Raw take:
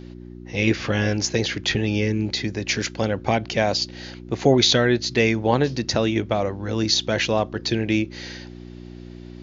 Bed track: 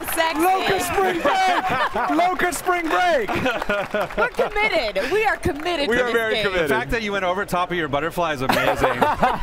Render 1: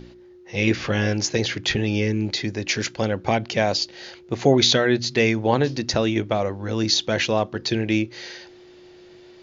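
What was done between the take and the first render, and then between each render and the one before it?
hum removal 60 Hz, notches 5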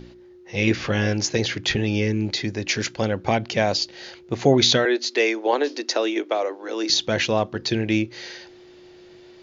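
0:04.85–0:06.90: Butterworth high-pass 290 Hz 48 dB per octave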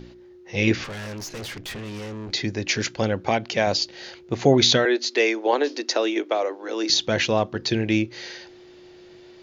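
0:00.84–0:02.31: tube saturation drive 32 dB, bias 0.65
0:03.24–0:03.67: low-shelf EQ 160 Hz −9 dB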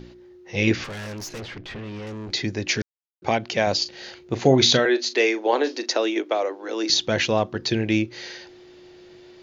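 0:01.40–0:02.07: high-frequency loss of the air 170 metres
0:02.82–0:03.22: silence
0:03.79–0:05.92: double-tracking delay 38 ms −12.5 dB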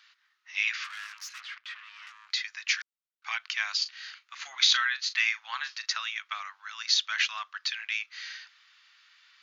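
elliptic high-pass filter 1,200 Hz, stop band 60 dB
high-shelf EQ 4,800 Hz −8 dB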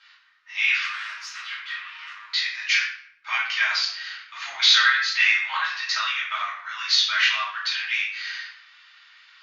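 high-frequency loss of the air 93 metres
rectangular room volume 130 cubic metres, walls mixed, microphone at 2.7 metres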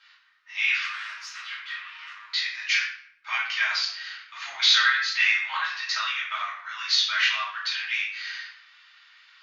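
level −2.5 dB

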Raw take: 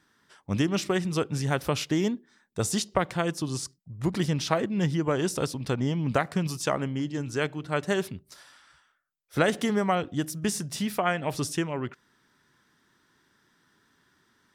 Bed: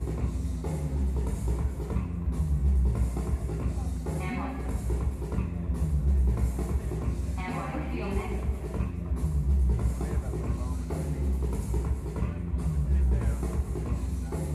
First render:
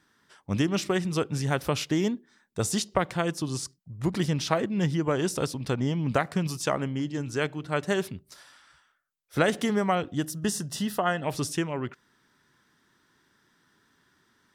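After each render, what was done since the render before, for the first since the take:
0:10.26–0:11.24: Butterworth band-reject 2,300 Hz, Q 4.4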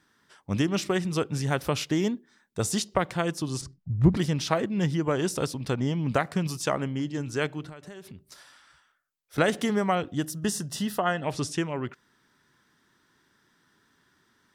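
0:03.61–0:04.17: RIAA equalisation playback
0:07.69–0:09.38: downward compressor 20 to 1, threshold −39 dBFS
0:11.00–0:11.60: low-pass filter 8,600 Hz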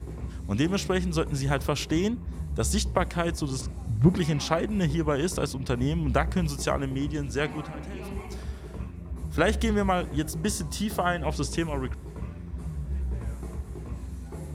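mix in bed −6 dB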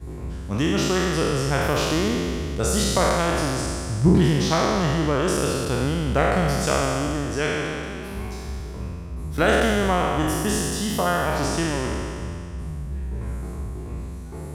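peak hold with a decay on every bin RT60 2.34 s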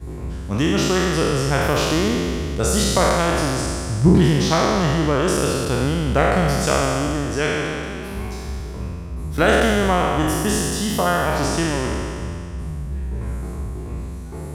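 level +3 dB

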